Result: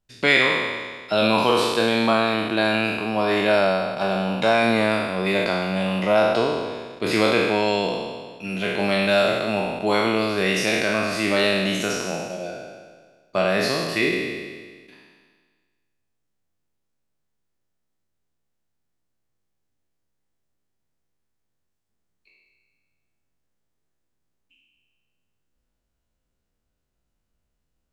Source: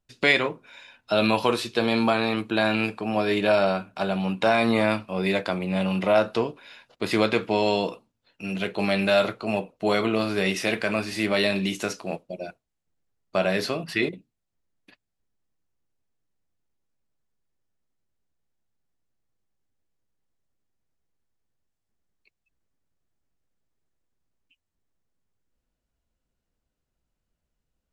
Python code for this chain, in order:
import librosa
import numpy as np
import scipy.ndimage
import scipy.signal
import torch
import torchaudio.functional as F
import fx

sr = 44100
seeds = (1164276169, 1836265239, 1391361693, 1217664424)

y = fx.spec_trails(x, sr, decay_s=1.59)